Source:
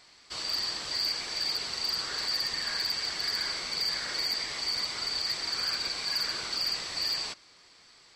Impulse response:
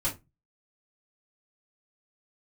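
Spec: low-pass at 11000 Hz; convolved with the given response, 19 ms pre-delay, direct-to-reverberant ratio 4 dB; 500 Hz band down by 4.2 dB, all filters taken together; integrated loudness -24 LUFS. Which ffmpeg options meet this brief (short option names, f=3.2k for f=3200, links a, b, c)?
-filter_complex "[0:a]lowpass=11k,equalizer=f=500:t=o:g=-5.5,asplit=2[a][b];[1:a]atrim=start_sample=2205,adelay=19[c];[b][c]afir=irnorm=-1:irlink=0,volume=-10.5dB[d];[a][d]amix=inputs=2:normalize=0,volume=4.5dB"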